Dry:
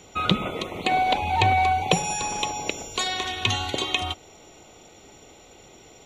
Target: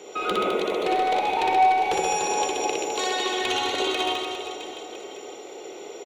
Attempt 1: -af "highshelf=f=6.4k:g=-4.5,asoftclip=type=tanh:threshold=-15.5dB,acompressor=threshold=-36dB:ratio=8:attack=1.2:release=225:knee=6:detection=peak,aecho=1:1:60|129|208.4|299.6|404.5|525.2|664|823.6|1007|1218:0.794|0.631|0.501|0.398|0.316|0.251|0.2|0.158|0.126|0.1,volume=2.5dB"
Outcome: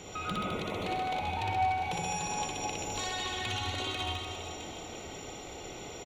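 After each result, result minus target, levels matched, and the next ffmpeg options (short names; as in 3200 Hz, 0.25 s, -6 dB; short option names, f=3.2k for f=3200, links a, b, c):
compressor: peak gain reduction +9.5 dB; 500 Hz band -3.0 dB
-af "highshelf=f=6.4k:g=-4.5,asoftclip=type=tanh:threshold=-15.5dB,acompressor=threshold=-25dB:ratio=8:attack=1.2:release=225:knee=6:detection=peak,aecho=1:1:60|129|208.4|299.6|404.5|525.2|664|823.6|1007|1218:0.794|0.631|0.501|0.398|0.316|0.251|0.2|0.158|0.126|0.1,volume=2.5dB"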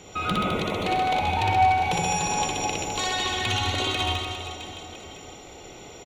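500 Hz band -5.0 dB
-af "highpass=f=400:t=q:w=3.1,highshelf=f=6.4k:g=-4.5,asoftclip=type=tanh:threshold=-15.5dB,acompressor=threshold=-25dB:ratio=8:attack=1.2:release=225:knee=6:detection=peak,aecho=1:1:60|129|208.4|299.6|404.5|525.2|664|823.6|1007|1218:0.794|0.631|0.501|0.398|0.316|0.251|0.2|0.158|0.126|0.1,volume=2.5dB"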